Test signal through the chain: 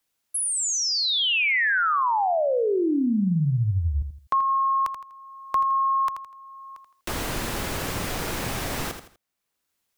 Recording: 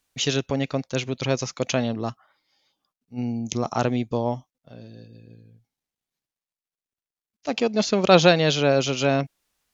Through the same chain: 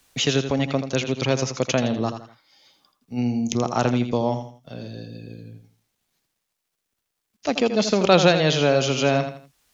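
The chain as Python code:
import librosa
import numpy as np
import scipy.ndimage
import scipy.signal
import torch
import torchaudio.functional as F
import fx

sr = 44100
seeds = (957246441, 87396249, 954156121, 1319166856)

y = fx.echo_feedback(x, sr, ms=82, feedback_pct=29, wet_db=-9.5)
y = fx.band_squash(y, sr, depth_pct=40)
y = y * 10.0 ** (1.5 / 20.0)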